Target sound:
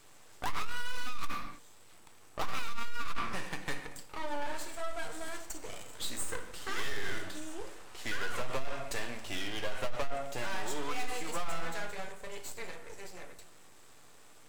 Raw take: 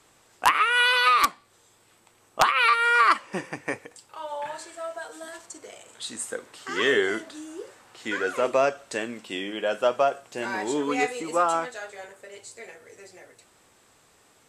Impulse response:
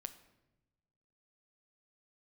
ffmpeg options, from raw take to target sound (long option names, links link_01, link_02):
-filter_complex "[0:a]acrossover=split=540[link_01][link_02];[link_01]acompressor=threshold=-43dB:ratio=6[link_03];[link_03][link_02]amix=inputs=2:normalize=0,aeval=exprs='max(val(0),0)':channel_layout=same[link_04];[1:a]atrim=start_sample=2205,afade=type=out:start_time=0.38:duration=0.01,atrim=end_sample=17199[link_05];[link_04][link_05]afir=irnorm=-1:irlink=0,alimiter=limit=-19.5dB:level=0:latency=1:release=20,asoftclip=type=tanh:threshold=-31.5dB,volume=8dB"